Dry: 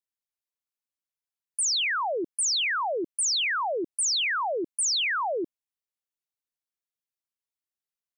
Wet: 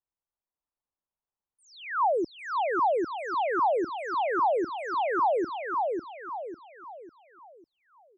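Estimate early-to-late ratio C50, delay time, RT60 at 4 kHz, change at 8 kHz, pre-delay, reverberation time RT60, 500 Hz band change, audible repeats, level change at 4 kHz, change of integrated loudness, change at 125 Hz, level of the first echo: none, 0.549 s, none, under -30 dB, none, none, +4.5 dB, 4, -21.0 dB, -3.0 dB, n/a, -3.5 dB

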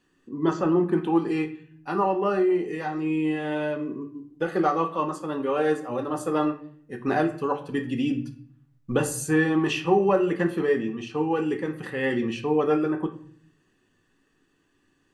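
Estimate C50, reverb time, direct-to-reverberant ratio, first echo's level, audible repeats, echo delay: 12.0 dB, 0.55 s, 5.0 dB, none, none, none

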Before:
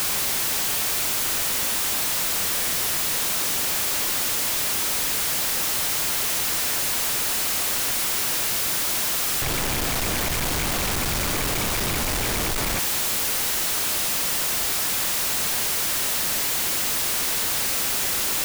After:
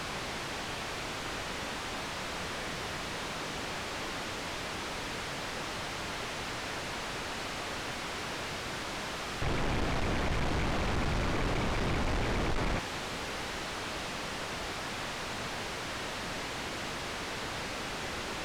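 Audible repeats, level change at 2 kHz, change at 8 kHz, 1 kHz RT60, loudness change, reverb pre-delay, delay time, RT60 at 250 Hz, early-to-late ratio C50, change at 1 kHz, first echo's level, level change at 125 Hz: none, -7.5 dB, -21.5 dB, none, -14.0 dB, none, none, none, none, -5.0 dB, none, -3.0 dB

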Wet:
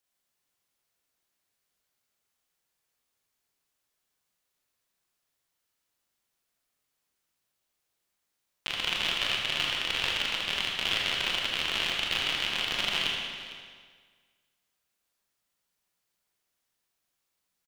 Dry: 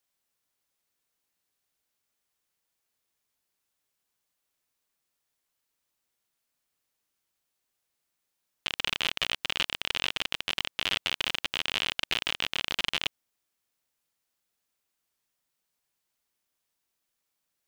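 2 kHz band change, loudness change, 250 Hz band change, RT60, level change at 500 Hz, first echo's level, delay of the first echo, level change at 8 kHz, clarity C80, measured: +1.5 dB, +1.5 dB, +1.5 dB, 1.7 s, +2.0 dB, -17.0 dB, 0.454 s, +1.0 dB, 2.0 dB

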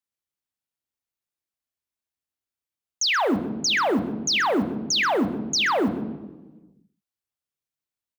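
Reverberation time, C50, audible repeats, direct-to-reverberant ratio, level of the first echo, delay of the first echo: 1.2 s, 11.5 dB, 1, 9.5 dB, -16.0 dB, 0.129 s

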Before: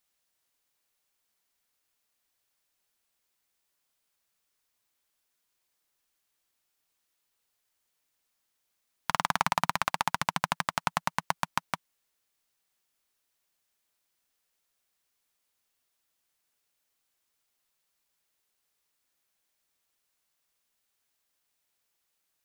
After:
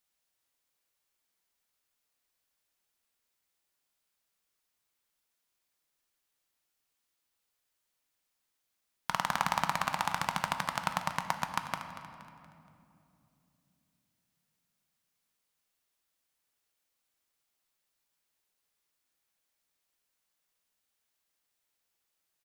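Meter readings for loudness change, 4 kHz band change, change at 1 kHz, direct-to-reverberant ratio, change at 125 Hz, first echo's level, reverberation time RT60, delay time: -2.5 dB, -2.5 dB, -2.5 dB, 6.0 dB, -2.0 dB, -13.5 dB, 2.9 s, 0.236 s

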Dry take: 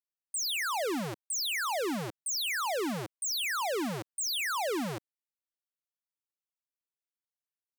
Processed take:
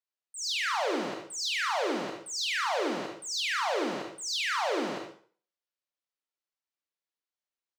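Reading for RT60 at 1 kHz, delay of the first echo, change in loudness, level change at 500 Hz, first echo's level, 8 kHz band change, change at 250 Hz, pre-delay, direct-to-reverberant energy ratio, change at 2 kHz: 0.50 s, 75 ms, +1.0 dB, +2.5 dB, -7.5 dB, -3.5 dB, -0.5 dB, 31 ms, 0.5 dB, +2.5 dB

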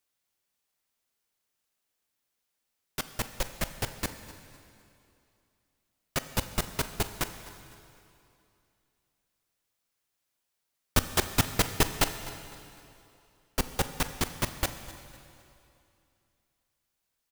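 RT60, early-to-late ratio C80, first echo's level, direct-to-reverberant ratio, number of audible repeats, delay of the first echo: 2.7 s, 10.5 dB, -18.5 dB, 9.0 dB, 3, 0.253 s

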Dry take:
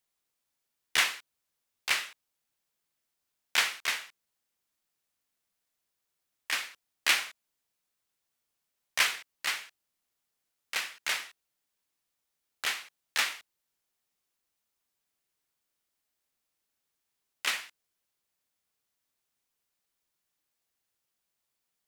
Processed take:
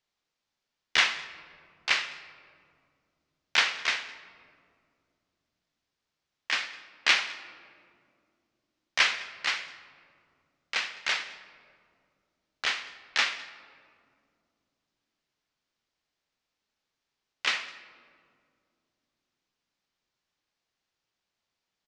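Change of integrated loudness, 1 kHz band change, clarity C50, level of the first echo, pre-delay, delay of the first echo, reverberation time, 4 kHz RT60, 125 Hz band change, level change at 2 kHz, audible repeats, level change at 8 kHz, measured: +2.5 dB, +3.5 dB, 13.0 dB, -22.5 dB, 4 ms, 0.208 s, 2.4 s, 1.1 s, n/a, +3.5 dB, 1, -3.5 dB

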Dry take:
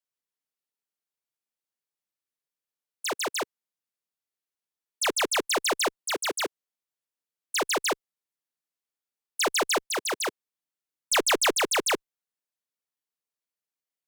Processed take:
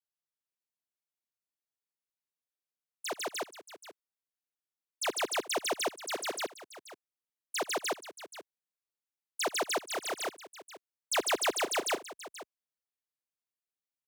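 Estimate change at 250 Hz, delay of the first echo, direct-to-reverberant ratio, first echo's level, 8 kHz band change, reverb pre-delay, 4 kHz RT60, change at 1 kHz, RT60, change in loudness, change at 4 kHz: -7.0 dB, 75 ms, none, -19.5 dB, -7.5 dB, none, none, -5.5 dB, none, -7.0 dB, -7.5 dB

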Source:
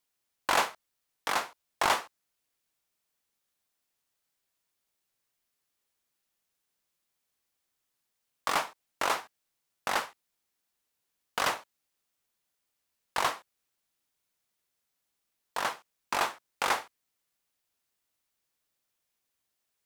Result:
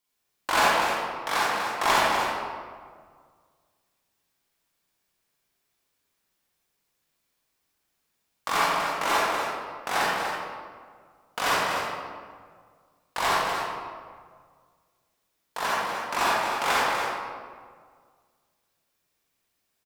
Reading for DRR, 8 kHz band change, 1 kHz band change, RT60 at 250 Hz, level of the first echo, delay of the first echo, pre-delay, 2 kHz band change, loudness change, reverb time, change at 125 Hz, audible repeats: -8.5 dB, +4.5 dB, +7.5 dB, 2.0 s, -7.0 dB, 0.245 s, 36 ms, +7.5 dB, +5.5 dB, 1.8 s, +9.5 dB, 1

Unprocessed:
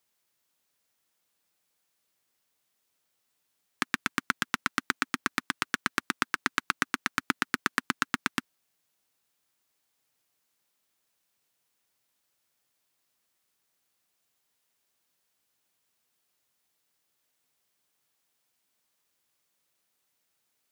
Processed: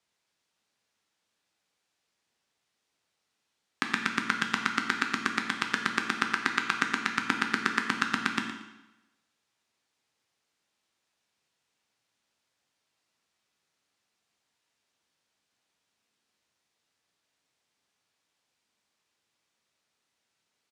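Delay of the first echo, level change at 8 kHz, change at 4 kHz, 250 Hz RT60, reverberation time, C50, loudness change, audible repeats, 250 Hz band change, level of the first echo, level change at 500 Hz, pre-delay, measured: 0.115 s, -2.5 dB, +1.5 dB, 0.95 s, 1.0 s, 5.5 dB, +1.5 dB, 1, +2.5 dB, -12.0 dB, +2.0 dB, 9 ms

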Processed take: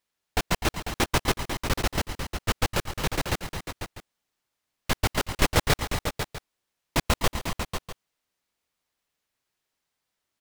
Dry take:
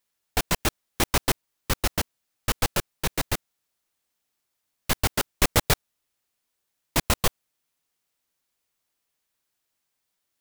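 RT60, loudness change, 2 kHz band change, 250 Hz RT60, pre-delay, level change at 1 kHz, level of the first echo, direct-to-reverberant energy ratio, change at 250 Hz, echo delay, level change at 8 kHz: none, -2.0 dB, +0.5 dB, none, none, +1.0 dB, -15.0 dB, none, +1.0 dB, 0.136 s, -4.0 dB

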